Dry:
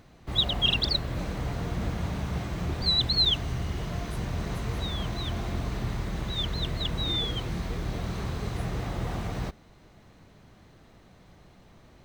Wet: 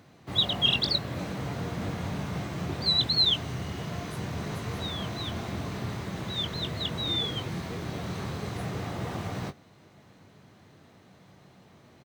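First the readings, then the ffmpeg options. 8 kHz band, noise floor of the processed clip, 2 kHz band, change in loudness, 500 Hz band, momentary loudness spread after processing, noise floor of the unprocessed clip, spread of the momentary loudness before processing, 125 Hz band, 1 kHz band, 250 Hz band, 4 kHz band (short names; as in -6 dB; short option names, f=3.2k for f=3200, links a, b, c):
+0.5 dB, -57 dBFS, +0.5 dB, -0.5 dB, +0.5 dB, 12 LU, -56 dBFS, 10 LU, -2.5 dB, +0.5 dB, 0.0 dB, +0.5 dB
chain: -filter_complex "[0:a]highpass=f=91:w=0.5412,highpass=f=91:w=1.3066,asplit=2[a][b];[b]adelay=21,volume=-10.5dB[c];[a][c]amix=inputs=2:normalize=0"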